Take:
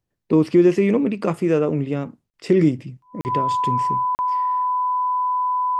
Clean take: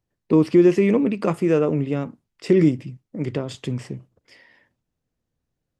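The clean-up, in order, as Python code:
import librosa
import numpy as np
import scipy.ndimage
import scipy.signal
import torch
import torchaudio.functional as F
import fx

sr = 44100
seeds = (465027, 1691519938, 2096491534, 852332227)

y = fx.notch(x, sr, hz=1000.0, q=30.0)
y = fx.fix_interpolate(y, sr, at_s=(2.3, 3.21, 4.15), length_ms=39.0)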